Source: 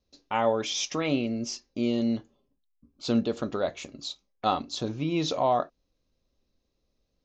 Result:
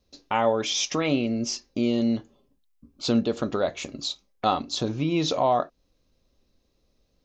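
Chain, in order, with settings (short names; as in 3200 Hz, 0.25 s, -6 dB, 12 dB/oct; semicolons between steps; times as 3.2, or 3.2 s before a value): in parallel at +2 dB: compressor, threshold -34 dBFS, peak gain reduction 14 dB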